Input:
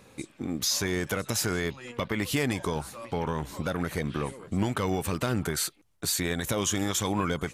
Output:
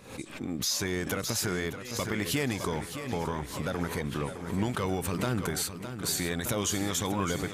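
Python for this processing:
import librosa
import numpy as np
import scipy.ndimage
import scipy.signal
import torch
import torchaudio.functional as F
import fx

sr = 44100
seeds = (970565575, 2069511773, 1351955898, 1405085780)

p1 = x + fx.echo_feedback(x, sr, ms=612, feedback_pct=51, wet_db=-10.0, dry=0)
p2 = fx.pre_swell(p1, sr, db_per_s=96.0)
y = p2 * 10.0 ** (-2.5 / 20.0)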